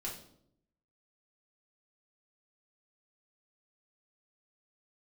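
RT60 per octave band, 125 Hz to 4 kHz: 1.0 s, 0.95 s, 0.80 s, 0.60 s, 0.50 s, 0.50 s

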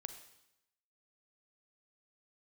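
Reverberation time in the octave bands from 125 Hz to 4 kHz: 0.95 s, 0.90 s, 0.85 s, 0.90 s, 0.85 s, 0.85 s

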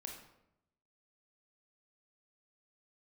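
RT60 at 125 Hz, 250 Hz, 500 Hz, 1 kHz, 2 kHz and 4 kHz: 1.1 s, 0.95 s, 0.90 s, 0.75 s, 0.65 s, 0.55 s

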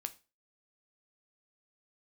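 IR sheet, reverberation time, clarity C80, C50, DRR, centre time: 0.30 s, 24.5 dB, 18.5 dB, 9.0 dB, 3 ms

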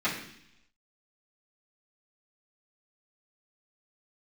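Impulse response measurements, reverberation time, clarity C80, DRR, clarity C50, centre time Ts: 0.70 s, 9.0 dB, -14.0 dB, 6.0 dB, 32 ms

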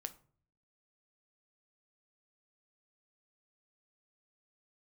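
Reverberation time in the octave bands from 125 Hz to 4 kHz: 0.75 s, 0.70 s, 0.50 s, 0.45 s, 0.35 s, 0.25 s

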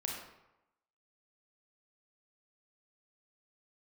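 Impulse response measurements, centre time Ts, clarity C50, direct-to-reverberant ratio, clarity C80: 52 ms, 1.5 dB, -1.5 dB, 4.5 dB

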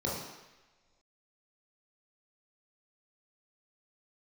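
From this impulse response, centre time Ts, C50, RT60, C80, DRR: 63 ms, 1.5 dB, no single decay rate, 5.0 dB, -5.5 dB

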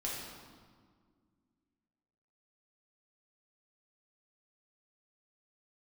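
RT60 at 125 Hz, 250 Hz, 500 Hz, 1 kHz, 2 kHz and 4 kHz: 2.4 s, 2.7 s, 1.9 s, 1.7 s, 1.3 s, 1.2 s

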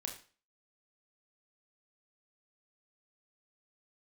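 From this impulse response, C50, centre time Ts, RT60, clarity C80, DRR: 9.0 dB, 20 ms, 0.40 s, 13.5 dB, 1.5 dB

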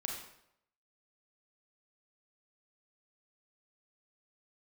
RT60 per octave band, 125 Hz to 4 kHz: 0.75 s, 0.70 s, 0.80 s, 0.75 s, 0.65 s, 0.60 s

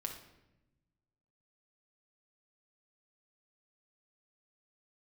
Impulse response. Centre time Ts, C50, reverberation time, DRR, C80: 22 ms, 6.5 dB, 0.95 s, 2.0 dB, 10.0 dB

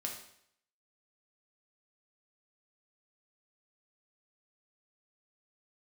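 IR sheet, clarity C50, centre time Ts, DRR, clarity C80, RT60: 5.5 dB, 29 ms, 0.0 dB, 9.0 dB, 0.70 s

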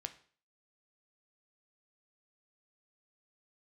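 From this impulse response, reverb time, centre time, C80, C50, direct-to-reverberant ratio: 0.45 s, 6 ms, 18.5 dB, 14.5 dB, 8.0 dB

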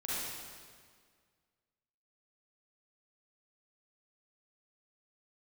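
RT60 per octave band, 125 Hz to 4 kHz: 2.0 s, 2.0 s, 1.9 s, 1.8 s, 1.7 s, 1.6 s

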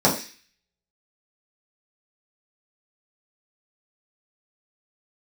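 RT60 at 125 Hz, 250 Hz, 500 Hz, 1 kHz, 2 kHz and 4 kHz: 0.30 s, 0.35 s, 0.35 s, 0.35 s, 0.60 s, 0.60 s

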